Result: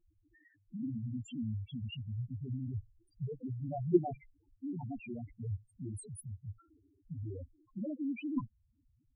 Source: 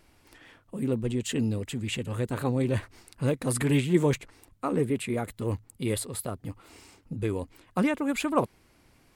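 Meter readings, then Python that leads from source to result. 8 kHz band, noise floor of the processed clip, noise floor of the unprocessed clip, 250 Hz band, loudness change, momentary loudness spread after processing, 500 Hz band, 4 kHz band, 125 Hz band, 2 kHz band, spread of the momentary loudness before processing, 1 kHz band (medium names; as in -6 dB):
-20.0 dB, -74 dBFS, -62 dBFS, -9.5 dB, -10.5 dB, 13 LU, -12.0 dB, -16.5 dB, -9.0 dB, -20.5 dB, 11 LU, -13.0 dB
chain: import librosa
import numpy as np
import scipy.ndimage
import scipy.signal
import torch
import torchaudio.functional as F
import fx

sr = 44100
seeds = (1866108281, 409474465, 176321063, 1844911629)

y = fx.cheby_harmonics(x, sr, harmonics=(3, 4, 7), levels_db=(-8, -25, -41), full_scale_db=-10.0)
y = fx.spec_topn(y, sr, count=2)
y = F.gain(torch.from_numpy(y), 9.0).numpy()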